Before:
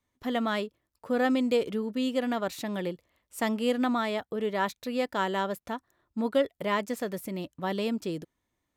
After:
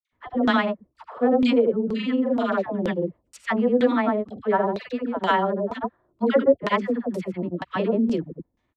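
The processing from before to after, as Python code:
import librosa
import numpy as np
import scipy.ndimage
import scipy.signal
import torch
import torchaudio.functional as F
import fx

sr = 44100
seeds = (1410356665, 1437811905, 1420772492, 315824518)

y = fx.dispersion(x, sr, late='lows', ms=103.0, hz=760.0)
y = fx.granulator(y, sr, seeds[0], grain_ms=100.0, per_s=20.0, spray_ms=100.0, spread_st=0)
y = fx.filter_lfo_lowpass(y, sr, shape='saw_down', hz=2.1, low_hz=350.0, high_hz=4900.0, q=0.98)
y = y * 10.0 ** (8.5 / 20.0)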